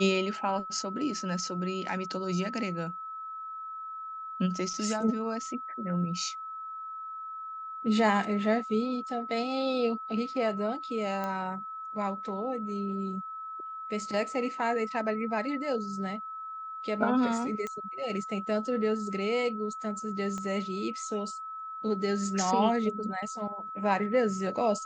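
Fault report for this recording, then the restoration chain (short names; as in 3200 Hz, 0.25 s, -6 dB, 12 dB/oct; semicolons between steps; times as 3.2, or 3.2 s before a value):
tone 1300 Hz -37 dBFS
11.24 pop -21 dBFS
17.67 pop -23 dBFS
20.38 pop -25 dBFS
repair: de-click; notch 1300 Hz, Q 30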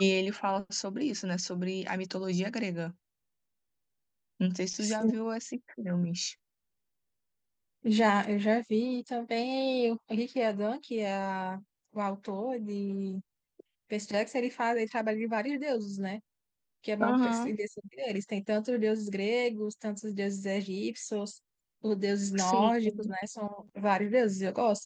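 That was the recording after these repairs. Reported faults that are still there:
20.38 pop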